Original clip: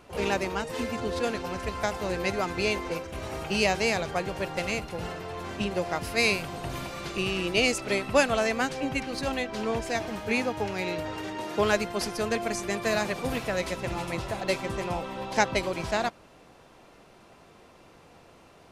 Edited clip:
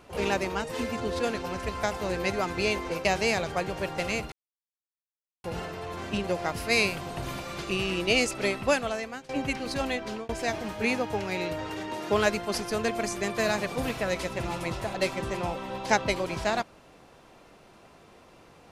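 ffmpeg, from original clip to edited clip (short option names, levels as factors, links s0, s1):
-filter_complex "[0:a]asplit=5[s0][s1][s2][s3][s4];[s0]atrim=end=3.052[s5];[s1]atrim=start=3.638:end=4.91,asetpts=PTS-STARTPTS,afade=t=out:st=1.268:d=0.004:c=hsin,apad=pad_dur=1.12[s6];[s2]atrim=start=4.91:end=8.76,asetpts=PTS-STARTPTS,afade=t=in:d=0.004:c=hsin,afade=t=out:st=3.05:d=0.8:silence=0.1[s7];[s3]atrim=start=8.76:end=9.76,asetpts=PTS-STARTPTS,afade=t=in:d=0.004:c=hsin:silence=0.1,afade=t=out:st=0.69:d=0.31:c=qsin[s8];[s4]atrim=start=9.76,asetpts=PTS-STARTPTS,afade=t=in:d=0.004:c=hsin[s9];[s6][s7][s8][s9]concat=n=4:v=0:a=1[s10];[s5][s10]acrossfade=d=0.004:c1=hsin:c2=hsin"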